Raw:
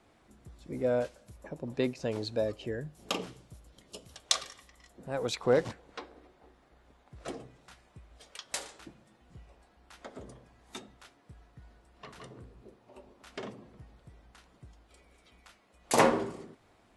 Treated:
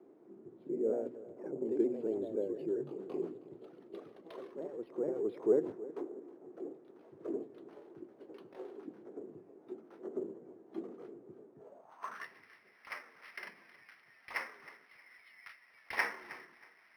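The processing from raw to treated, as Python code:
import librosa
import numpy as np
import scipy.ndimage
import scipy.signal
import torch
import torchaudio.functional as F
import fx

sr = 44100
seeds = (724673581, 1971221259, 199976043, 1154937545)

p1 = fx.pitch_ramps(x, sr, semitones=-2.5, every_ms=230)
p2 = scipy.signal.sosfilt(scipy.signal.butter(4, 120.0, 'highpass', fs=sr, output='sos'), p1)
p3 = fx.peak_eq(p2, sr, hz=550.0, db=-3.0, octaves=0.77)
p4 = fx.hum_notches(p3, sr, base_hz=60, count=4)
p5 = fx.over_compress(p4, sr, threshold_db=-44.0, ratio=-0.5)
p6 = p4 + (p5 * 10.0 ** (-1.0 / 20.0))
p7 = fx.echo_pitch(p6, sr, ms=113, semitones=2, count=2, db_per_echo=-6.0)
p8 = fx.echo_feedback(p7, sr, ms=317, feedback_pct=26, wet_db=-17.5)
p9 = fx.filter_sweep_bandpass(p8, sr, from_hz=370.0, to_hz=2000.0, start_s=11.56, end_s=12.28, q=4.8)
p10 = np.interp(np.arange(len(p9)), np.arange(len(p9))[::6], p9[::6])
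y = p10 * 10.0 ** (5.5 / 20.0)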